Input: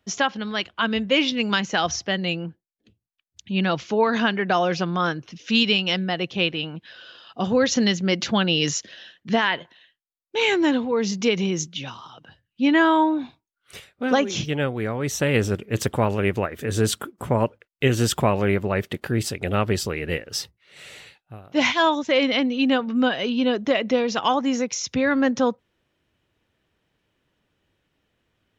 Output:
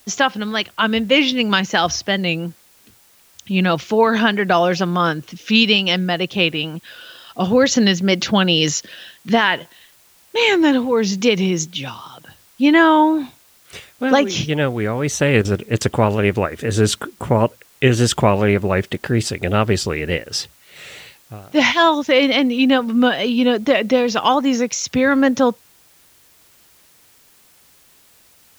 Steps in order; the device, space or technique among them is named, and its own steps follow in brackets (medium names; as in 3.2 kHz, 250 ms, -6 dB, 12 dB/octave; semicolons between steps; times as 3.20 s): worn cassette (low-pass 9.3 kHz; wow and flutter; level dips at 15.42/15.78 s, 28 ms -9 dB; white noise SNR 34 dB); trim +5.5 dB